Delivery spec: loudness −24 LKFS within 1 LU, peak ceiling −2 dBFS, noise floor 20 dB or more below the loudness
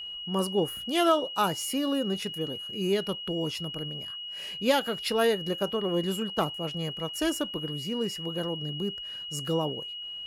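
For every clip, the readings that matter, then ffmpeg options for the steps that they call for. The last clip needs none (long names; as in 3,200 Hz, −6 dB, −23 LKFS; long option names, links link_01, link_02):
interfering tone 2,900 Hz; level of the tone −36 dBFS; integrated loudness −29.5 LKFS; sample peak −11.5 dBFS; target loudness −24.0 LKFS
→ -af "bandreject=frequency=2900:width=30"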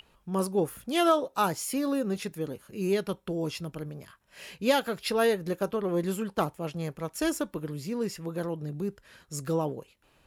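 interfering tone none found; integrated loudness −30.0 LKFS; sample peak −12.0 dBFS; target loudness −24.0 LKFS
→ -af "volume=6dB"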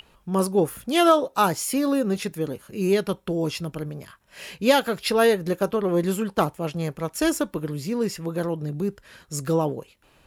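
integrated loudness −24.0 LKFS; sample peak −6.0 dBFS; background noise floor −59 dBFS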